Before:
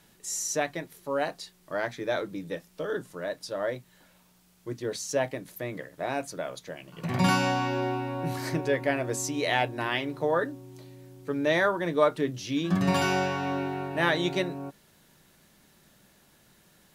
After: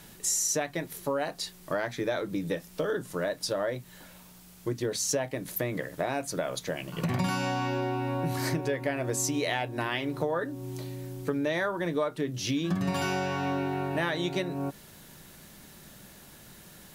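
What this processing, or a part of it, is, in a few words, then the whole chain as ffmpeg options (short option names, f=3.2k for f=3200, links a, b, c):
ASMR close-microphone chain: -af "lowshelf=f=160:g=4,acompressor=threshold=-35dB:ratio=6,highshelf=f=8.9k:g=5,volume=8dB"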